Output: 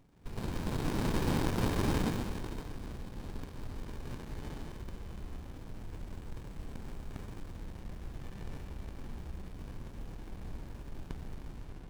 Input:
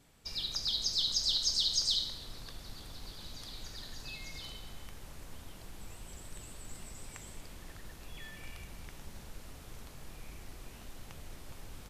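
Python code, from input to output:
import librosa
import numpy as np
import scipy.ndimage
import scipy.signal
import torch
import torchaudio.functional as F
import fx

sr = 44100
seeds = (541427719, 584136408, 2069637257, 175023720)

y = fx.tape_stop_end(x, sr, length_s=0.61)
y = fx.rev_schroeder(y, sr, rt60_s=2.4, comb_ms=30, drr_db=-2.5)
y = fx.running_max(y, sr, window=65)
y = y * librosa.db_to_amplitude(2.5)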